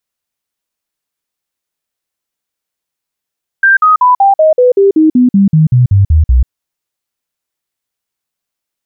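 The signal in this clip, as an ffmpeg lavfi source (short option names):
-f lavfi -i "aevalsrc='0.668*clip(min(mod(t,0.19),0.14-mod(t,0.19))/0.005,0,1)*sin(2*PI*1580*pow(2,-floor(t/0.19)/3)*mod(t,0.19))':d=2.85:s=44100"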